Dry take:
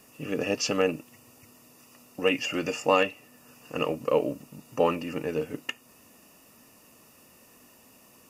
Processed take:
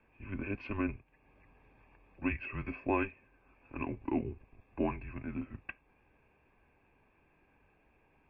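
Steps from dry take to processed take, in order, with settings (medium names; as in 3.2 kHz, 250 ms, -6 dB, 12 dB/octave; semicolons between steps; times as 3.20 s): mistuned SSB -200 Hz 200–2900 Hz; 0.97–2.22 s: three bands compressed up and down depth 100%; trim -9 dB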